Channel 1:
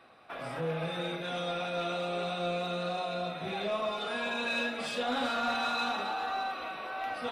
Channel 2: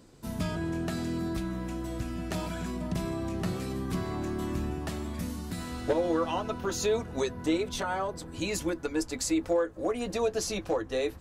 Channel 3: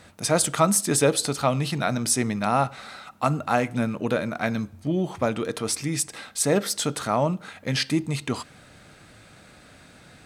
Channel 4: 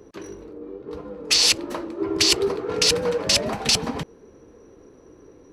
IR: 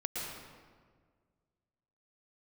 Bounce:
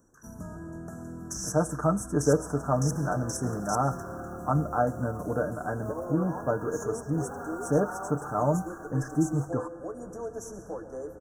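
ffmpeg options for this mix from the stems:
-filter_complex "[0:a]lowpass=1.5k,lowshelf=f=260:g=-10.5,acrusher=bits=4:mode=log:mix=0:aa=0.000001,adelay=2150,volume=-9.5dB,asplit=2[a][b];[b]volume=-7dB[c];[1:a]volume=-11dB,asplit=2[d][e];[e]volume=-8.5dB[f];[2:a]lowpass=f=1.5k:p=1,aecho=1:1:6.7:0.65,adelay=1250,volume=-4.5dB[g];[3:a]alimiter=limit=-13.5dB:level=0:latency=1:release=117,highpass=f=1.5k:w=0.5412,highpass=f=1.5k:w=1.3066,volume=-7dB,asplit=2[h][i];[i]volume=-12dB[j];[4:a]atrim=start_sample=2205[k];[c][f][j]amix=inputs=3:normalize=0[l];[l][k]afir=irnorm=-1:irlink=0[m];[a][d][g][h][m]amix=inputs=5:normalize=0,asuperstop=centerf=3100:order=20:qfactor=0.77"

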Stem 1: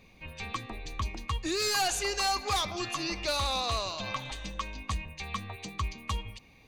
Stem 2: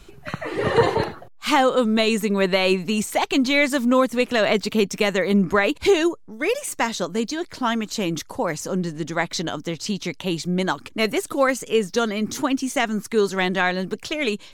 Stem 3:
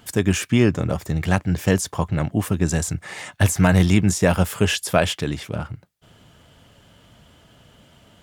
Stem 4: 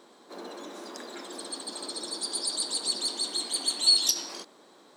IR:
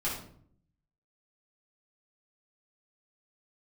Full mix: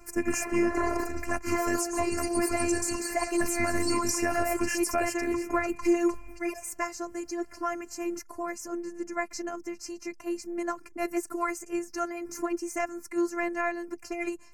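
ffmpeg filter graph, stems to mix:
-filter_complex "[0:a]aecho=1:1:5.2:0.8,acompressor=threshold=-32dB:ratio=6,volume=0.5dB[a];[1:a]volume=-4.5dB[b];[2:a]adynamicequalizer=threshold=0.02:dfrequency=1500:dqfactor=0.7:tfrequency=1500:tqfactor=0.7:attack=5:release=100:ratio=0.375:range=2:mode=boostabove:tftype=highshelf,volume=-4dB[c];[3:a]volume=-1.5dB,asplit=3[d][e][f];[d]atrim=end=1.38,asetpts=PTS-STARTPTS,afade=t=out:st=1.376:d=0.004:c=hsin[g];[e]atrim=start=1.38:end=1.94,asetpts=PTS-STARTPTS,volume=0[h];[f]atrim=start=1.94,asetpts=PTS-STARTPTS,afade=t=in:d=0.004:c=hsin[i];[g][h][i]concat=n=3:v=0:a=1[j];[a][b][c][j]amix=inputs=4:normalize=0,afftfilt=real='hypot(re,im)*cos(PI*b)':imag='0':win_size=512:overlap=0.75,asuperstop=centerf=3500:order=4:qfactor=1.2,alimiter=limit=-14dB:level=0:latency=1:release=171"

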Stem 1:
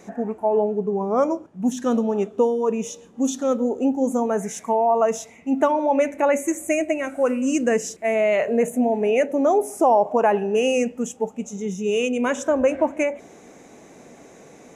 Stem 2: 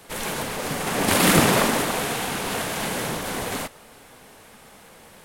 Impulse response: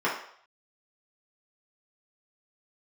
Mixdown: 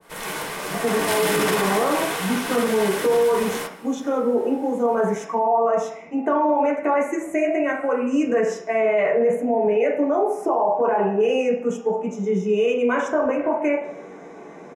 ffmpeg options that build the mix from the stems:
-filter_complex "[0:a]lowpass=f=2.7k:p=1,acompressor=threshold=-21dB:ratio=6,adelay=650,volume=-3.5dB,asplit=2[a][b];[b]volume=-3.5dB[c];[1:a]adynamicequalizer=threshold=0.0178:dfrequency=1600:dqfactor=0.7:tfrequency=1600:tqfactor=0.7:attack=5:release=100:ratio=0.375:range=2.5:mode=boostabove:tftype=highshelf,volume=-8.5dB,asplit=2[d][e];[e]volume=-8.5dB[f];[2:a]atrim=start_sample=2205[g];[c][f]amix=inputs=2:normalize=0[h];[h][g]afir=irnorm=-1:irlink=0[i];[a][d][i]amix=inputs=3:normalize=0,alimiter=limit=-12dB:level=0:latency=1:release=12"

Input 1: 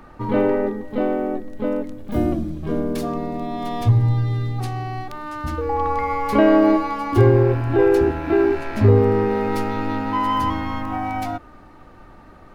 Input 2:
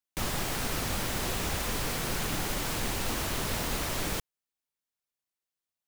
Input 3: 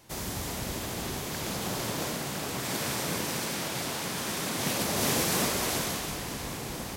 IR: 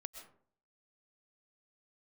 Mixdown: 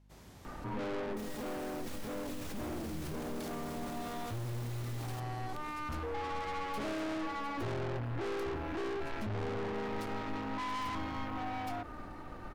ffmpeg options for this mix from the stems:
-filter_complex "[0:a]aeval=exprs='(tanh(25.1*val(0)+0.45)-tanh(0.45))/25.1':c=same,adelay=450,volume=1dB[a];[1:a]highpass=49,alimiter=level_in=5.5dB:limit=-24dB:level=0:latency=1,volume=-5.5dB,adelay=1000,volume=-2.5dB[b];[2:a]aeval=exprs='val(0)+0.00794*(sin(2*PI*50*n/s)+sin(2*PI*2*50*n/s)/2+sin(2*PI*3*50*n/s)/3+sin(2*PI*4*50*n/s)/4+sin(2*PI*5*50*n/s)/5)':c=same,aemphasis=mode=reproduction:type=cd,volume=-19.5dB[c];[a][b][c]amix=inputs=3:normalize=0,alimiter=level_in=8.5dB:limit=-24dB:level=0:latency=1:release=25,volume=-8.5dB"

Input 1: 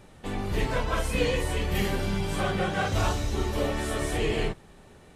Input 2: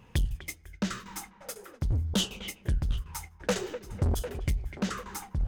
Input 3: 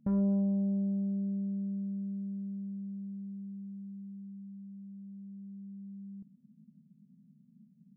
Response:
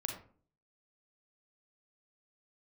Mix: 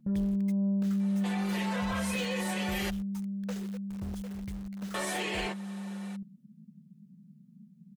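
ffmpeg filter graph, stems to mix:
-filter_complex "[0:a]highpass=570,acompressor=threshold=-40dB:ratio=2,adelay=1000,volume=1dB,asplit=3[a][b][c];[a]atrim=end=2.9,asetpts=PTS-STARTPTS,afade=t=out:st=2.896:d=0.004:c=hsin[d];[b]atrim=start=2.9:end=4.94,asetpts=PTS-STARTPTS,volume=0[e];[c]atrim=start=4.94,asetpts=PTS-STARTPTS,afade=t=in:d=0.004:c=hsin[f];[d][e][f]concat=n=3:v=0:a=1[g];[1:a]lowpass=11k,acrusher=bits=5:mix=0:aa=0.000001,volume=-19.5dB[h];[2:a]volume=-2.5dB[i];[g][i]amix=inputs=2:normalize=0,aecho=1:1:5.6:0.66,alimiter=level_in=4.5dB:limit=-24dB:level=0:latency=1:release=31,volume=-4.5dB,volume=0dB[j];[h][j]amix=inputs=2:normalize=0,acontrast=30,asoftclip=type=tanh:threshold=-22dB"

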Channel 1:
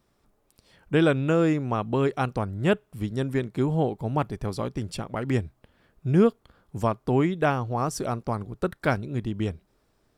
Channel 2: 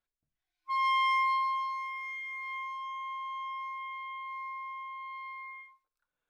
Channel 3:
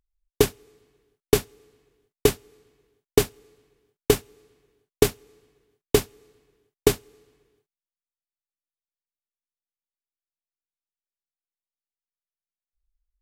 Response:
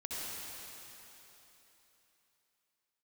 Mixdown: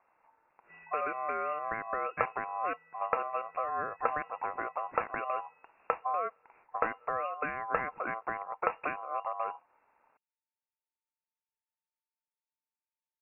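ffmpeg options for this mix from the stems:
-filter_complex "[0:a]acompressor=threshold=-29dB:ratio=6,volume=1.5dB[a];[1:a]highpass=1.1k,alimiter=level_in=5.5dB:limit=-24dB:level=0:latency=1,volume=-5.5dB,volume=-15.5dB[b];[2:a]acompressor=threshold=-26dB:ratio=3,adelay=1800,volume=0dB[c];[a][b][c]amix=inputs=3:normalize=0,aeval=exprs='val(0)*sin(2*PI*1900*n/s)':c=same,lowpass=f=2.4k:t=q:w=0.5098,lowpass=f=2.4k:t=q:w=0.6013,lowpass=f=2.4k:t=q:w=0.9,lowpass=f=2.4k:t=q:w=2.563,afreqshift=-2800"

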